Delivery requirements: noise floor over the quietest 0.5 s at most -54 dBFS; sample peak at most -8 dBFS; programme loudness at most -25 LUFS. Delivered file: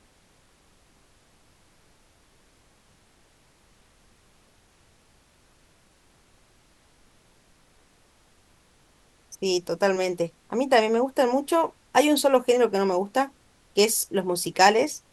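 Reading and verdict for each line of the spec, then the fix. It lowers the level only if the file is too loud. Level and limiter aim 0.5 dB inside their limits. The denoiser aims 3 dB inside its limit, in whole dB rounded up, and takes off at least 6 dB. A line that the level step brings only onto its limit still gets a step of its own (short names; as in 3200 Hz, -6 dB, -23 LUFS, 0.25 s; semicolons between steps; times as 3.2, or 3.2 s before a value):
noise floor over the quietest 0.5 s -60 dBFS: OK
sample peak -4.5 dBFS: fail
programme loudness -23.0 LUFS: fail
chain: gain -2.5 dB; limiter -8.5 dBFS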